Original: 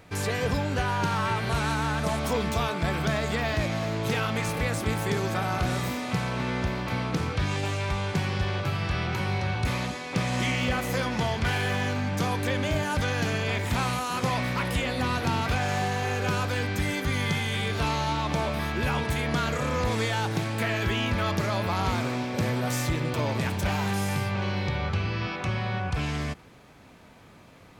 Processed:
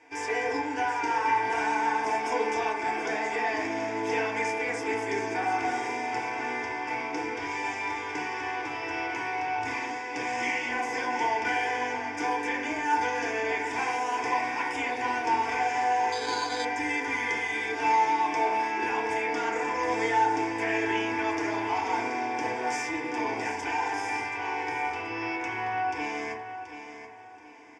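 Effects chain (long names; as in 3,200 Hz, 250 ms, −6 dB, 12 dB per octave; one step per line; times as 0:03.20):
low-shelf EQ 450 Hz −9 dB
phaser with its sweep stopped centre 850 Hz, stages 8
on a send: repeating echo 729 ms, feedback 31%, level −10.5 dB
on the sum: feedback delay network reverb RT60 0.66 s, low-frequency decay 0.75×, high-frequency decay 0.3×, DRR −3.5 dB
0:16.12–0:16.65: bad sample-rate conversion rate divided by 8×, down filtered, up hold
loudspeaker in its box 240–6,800 Hz, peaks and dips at 1,800 Hz −3 dB, 3,000 Hz −5 dB, 5,000 Hz +9 dB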